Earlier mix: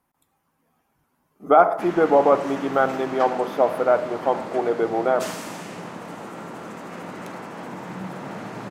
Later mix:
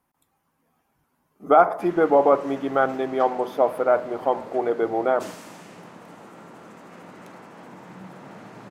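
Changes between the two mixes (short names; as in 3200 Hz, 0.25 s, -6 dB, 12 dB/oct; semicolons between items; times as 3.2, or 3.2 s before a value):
speech: send off; background -8.5 dB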